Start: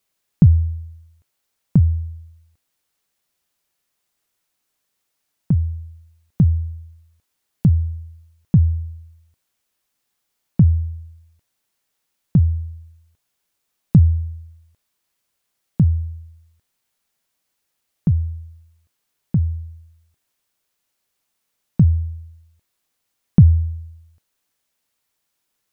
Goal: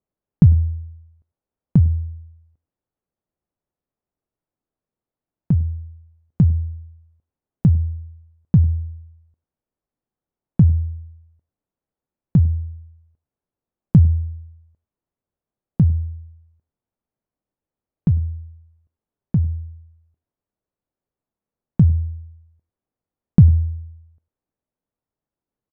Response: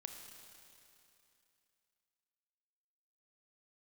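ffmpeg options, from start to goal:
-af "aecho=1:1:100:0.0708,adynamicsmooth=sensitivity=4.5:basefreq=700"

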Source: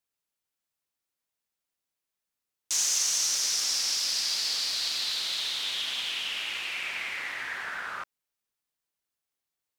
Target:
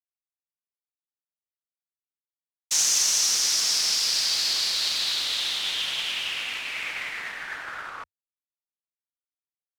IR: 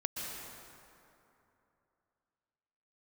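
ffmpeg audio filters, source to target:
-af "anlmdn=0.0398,afreqshift=-93,agate=range=-33dB:threshold=-30dB:ratio=3:detection=peak,volume=4.5dB"

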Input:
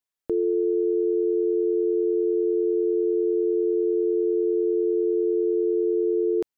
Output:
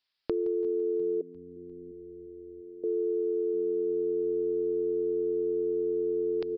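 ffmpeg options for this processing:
ffmpeg -i in.wav -filter_complex "[0:a]aresample=11025,aresample=44100,crystalizer=i=9.5:c=0,asplit=2[link_01][link_02];[link_02]aecho=0:1:168|336|504|672|840|1008:0.316|0.171|0.0922|0.0498|0.0269|0.0145[link_03];[link_01][link_03]amix=inputs=2:normalize=0,acompressor=threshold=-26dB:ratio=10,asettb=1/sr,asplit=3[link_04][link_05][link_06];[link_04]atrim=end=1.214[link_07];[link_05]atrim=start=1.21:end=2.84,asetpts=PTS-STARTPTS,afade=type=in:duration=0.004:curve=qsin,afade=type=out:start_time=1.626:duration=0.004:curve=qsin,asplit=3[link_08][link_09][link_10];[link_08]bandpass=frequency=270:width_type=q:width=8,volume=0dB[link_11];[link_09]bandpass=frequency=2290:width_type=q:width=8,volume=-6dB[link_12];[link_10]bandpass=frequency=3010:width_type=q:width=8,volume=-9dB[link_13];[link_11][link_12][link_13]amix=inputs=3:normalize=0[link_14];[link_06]atrim=start=2.836[link_15];[link_07][link_14]acrossfade=duration=0.004:curve1=hsin:curve2=qsin[link_16];[link_16][link_15]acrossfade=duration=0.004:curve1=qsin:curve2=hsin,asplit=2[link_17][link_18];[link_18]asplit=4[link_19][link_20][link_21][link_22];[link_19]adelay=350,afreqshift=-90,volume=-22dB[link_23];[link_20]adelay=700,afreqshift=-180,volume=-26.6dB[link_24];[link_21]adelay=1050,afreqshift=-270,volume=-31.2dB[link_25];[link_22]adelay=1400,afreqshift=-360,volume=-35.7dB[link_26];[link_23][link_24][link_25][link_26]amix=inputs=4:normalize=0[link_27];[link_17][link_27]amix=inputs=2:normalize=0" out.wav

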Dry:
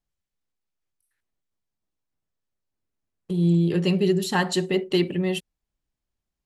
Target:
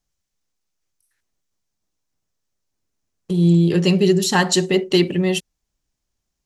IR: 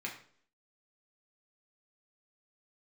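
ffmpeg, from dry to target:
-af "equalizer=frequency=6100:width=1.6:gain=8.5,volume=5.5dB"

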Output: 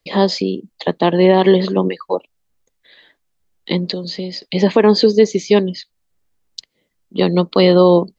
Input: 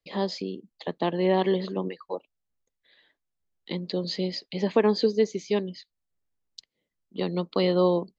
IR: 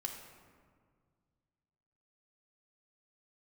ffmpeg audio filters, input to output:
-filter_complex "[0:a]asettb=1/sr,asplit=3[link_01][link_02][link_03];[link_01]atrim=end=3.924[link_04];[link_02]atrim=start=3.92:end=4.42,asetpts=PTS-STARTPTS,afade=type=in:duration=0.004:curve=qsin,afade=type=out:start_time=0.496:duration=0.004:curve=qsin,acrossover=split=220|5700[link_05][link_06][link_07];[link_05]acompressor=threshold=-44dB:ratio=4[link_08];[link_06]acompressor=threshold=-41dB:ratio=4[link_09];[link_07]acompressor=threshold=-52dB:ratio=4[link_10];[link_08][link_09][link_10]amix=inputs=3:normalize=0[link_11];[link_03]atrim=start=4.416[link_12];[link_04][link_11]acrossfade=duration=0.004:curve1=hsin:curve2=qsin[link_13];[link_13][link_12]acrossfade=duration=0.004:curve1=qsin:curve2=hsin,alimiter=level_in=14.5dB:limit=-1dB:release=50:level=0:latency=1,volume=-1dB"

